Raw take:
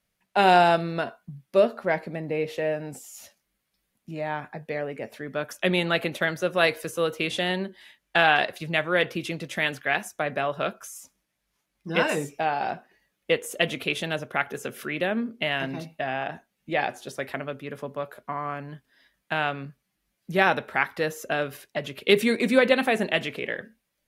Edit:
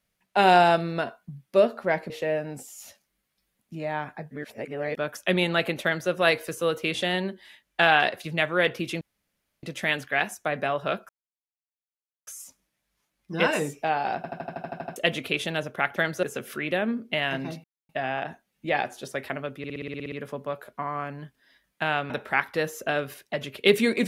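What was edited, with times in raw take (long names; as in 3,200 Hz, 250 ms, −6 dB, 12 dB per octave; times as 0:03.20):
0:02.10–0:02.46: remove
0:04.67–0:05.33: reverse
0:06.19–0:06.46: duplicate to 0:14.52
0:09.37: splice in room tone 0.62 s
0:10.83: splice in silence 1.18 s
0:12.72: stutter in place 0.08 s, 10 plays
0:15.93: splice in silence 0.25 s
0:17.62: stutter 0.06 s, 10 plays
0:19.60–0:20.53: remove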